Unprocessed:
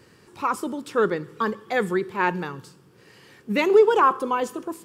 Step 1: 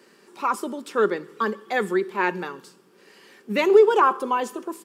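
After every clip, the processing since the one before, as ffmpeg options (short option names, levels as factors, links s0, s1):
-af "highpass=f=220:w=0.5412,highpass=f=220:w=1.3066,aecho=1:1:5.1:0.31"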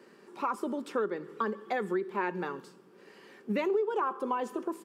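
-af "highshelf=f=2400:g=-10.5,acompressor=threshold=0.0398:ratio=5"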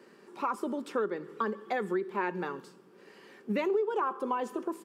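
-af anull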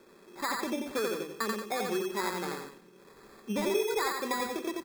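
-filter_complex "[0:a]acrusher=samples=15:mix=1:aa=0.000001,asplit=2[s0][s1];[s1]aecho=0:1:87.46|180.8:0.708|0.282[s2];[s0][s2]amix=inputs=2:normalize=0,volume=0.794"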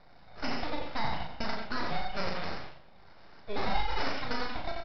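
-filter_complex "[0:a]aresample=11025,aeval=exprs='abs(val(0))':c=same,aresample=44100,asplit=2[s0][s1];[s1]adelay=37,volume=0.562[s2];[s0][s2]amix=inputs=2:normalize=0,volume=1.12"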